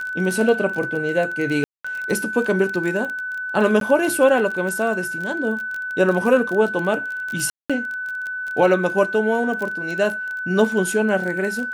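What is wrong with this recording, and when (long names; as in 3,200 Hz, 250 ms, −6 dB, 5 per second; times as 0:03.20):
surface crackle 22 per second −24 dBFS
whistle 1,500 Hz −25 dBFS
0:01.64–0:01.84: drop-out 205 ms
0:03.80–0:03.81: drop-out
0:07.50–0:07.70: drop-out 196 ms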